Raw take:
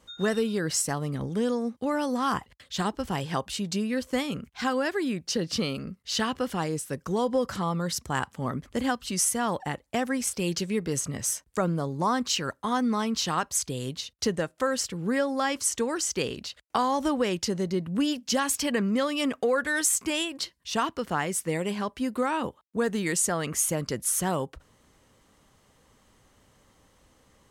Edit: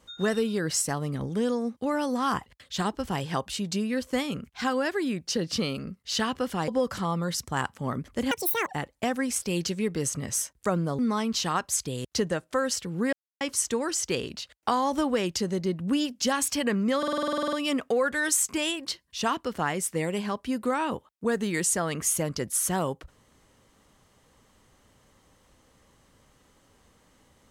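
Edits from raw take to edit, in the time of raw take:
0:06.68–0:07.26: remove
0:08.89–0:09.58: play speed 193%
0:11.90–0:12.81: remove
0:13.87–0:14.12: remove
0:15.20–0:15.48: silence
0:19.05: stutter 0.05 s, 12 plays

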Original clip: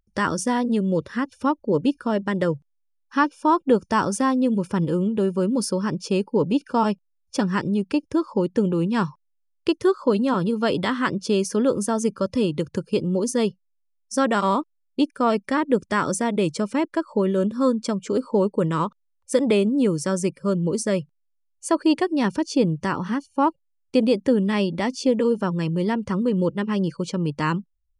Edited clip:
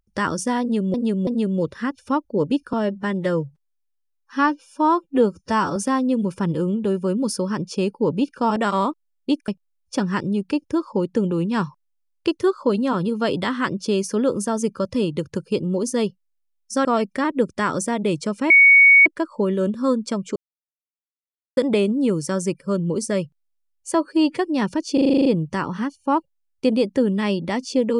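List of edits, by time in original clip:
0:00.61–0:00.94: repeat, 3 plays
0:02.07–0:04.09: time-stretch 1.5×
0:14.26–0:15.18: move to 0:06.89
0:16.83: insert tone 2,230 Hz −7.5 dBFS 0.56 s
0:18.13–0:19.34: silence
0:21.71–0:22.00: time-stretch 1.5×
0:22.56: stutter 0.04 s, 9 plays

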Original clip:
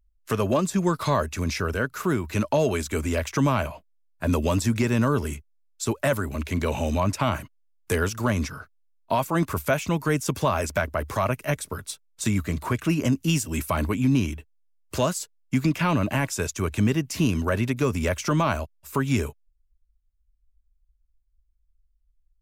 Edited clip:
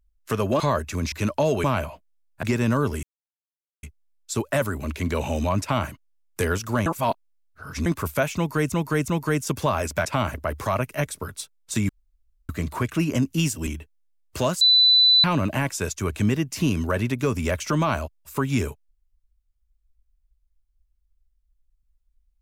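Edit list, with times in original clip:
0:00.60–0:01.04: remove
0:01.56–0:02.26: remove
0:02.78–0:03.46: remove
0:04.25–0:04.74: remove
0:05.34: splice in silence 0.80 s
0:07.12–0:07.41: duplicate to 0:10.84
0:08.37–0:09.37: reverse
0:09.87–0:10.23: repeat, 3 plays
0:12.39: splice in room tone 0.60 s
0:13.57–0:14.25: remove
0:15.19–0:15.82: beep over 3,990 Hz −12.5 dBFS

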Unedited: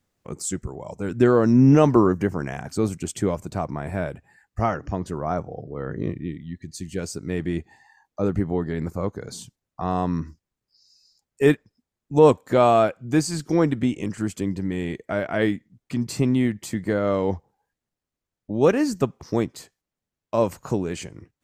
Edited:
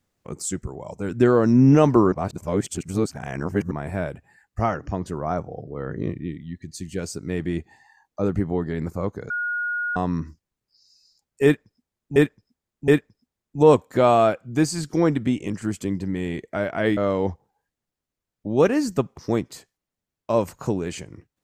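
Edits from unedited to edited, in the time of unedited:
0:02.12–0:03.71: reverse
0:09.30–0:09.96: beep over 1,440 Hz −23 dBFS
0:11.44–0:12.16: repeat, 3 plays
0:15.53–0:17.01: remove

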